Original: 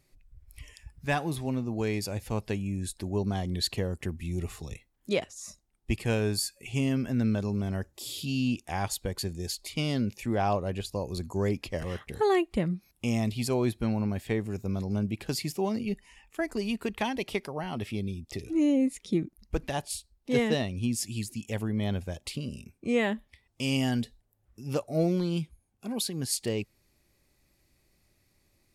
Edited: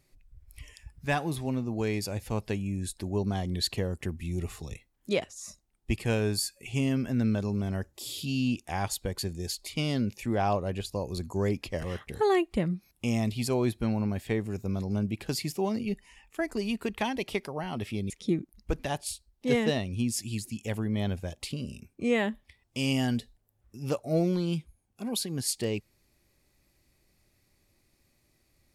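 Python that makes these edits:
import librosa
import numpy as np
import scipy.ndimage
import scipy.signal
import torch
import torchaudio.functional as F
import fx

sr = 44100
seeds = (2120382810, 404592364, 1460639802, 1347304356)

y = fx.edit(x, sr, fx.cut(start_s=18.1, length_s=0.84), tone=tone)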